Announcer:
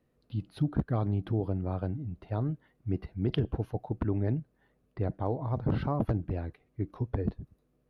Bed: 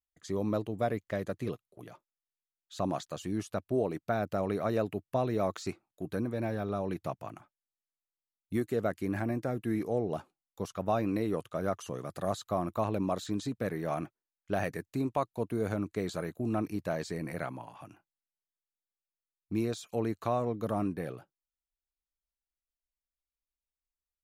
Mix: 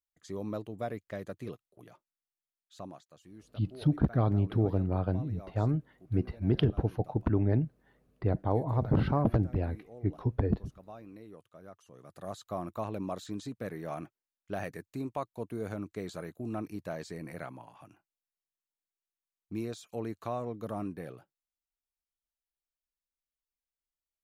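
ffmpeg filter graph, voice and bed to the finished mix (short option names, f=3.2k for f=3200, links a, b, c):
-filter_complex "[0:a]adelay=3250,volume=2.5dB[a];[1:a]volume=8dB,afade=t=out:st=2.51:d=0.49:silence=0.223872,afade=t=in:st=11.88:d=0.67:silence=0.211349[b];[a][b]amix=inputs=2:normalize=0"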